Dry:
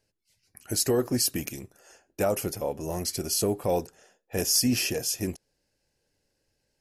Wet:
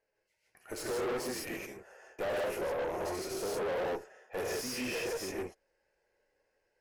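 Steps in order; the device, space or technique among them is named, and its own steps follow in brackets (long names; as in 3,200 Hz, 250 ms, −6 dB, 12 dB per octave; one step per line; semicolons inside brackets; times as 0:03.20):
octave-band graphic EQ 125/250/500/1,000/2,000/4,000 Hz −10/−3/+9/+7/+9/−4 dB
reverb whose tail is shaped and stops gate 190 ms rising, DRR −4 dB
tube preamp driven hard (tube saturation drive 24 dB, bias 0.6; low-shelf EQ 180 Hz −3 dB; high-shelf EQ 4,500 Hz −9 dB)
level −7 dB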